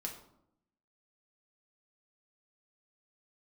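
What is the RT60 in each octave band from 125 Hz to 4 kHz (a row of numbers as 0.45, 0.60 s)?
1.0, 1.0, 0.80, 0.70, 0.50, 0.45 s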